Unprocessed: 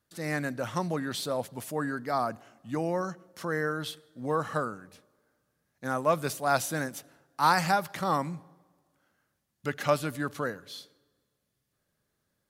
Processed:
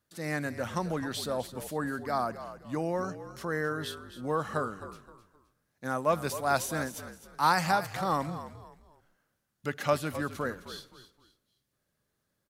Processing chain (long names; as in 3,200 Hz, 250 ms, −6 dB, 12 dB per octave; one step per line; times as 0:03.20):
echo with shifted repeats 261 ms, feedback 30%, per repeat −55 Hz, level −12.5 dB
level −1.5 dB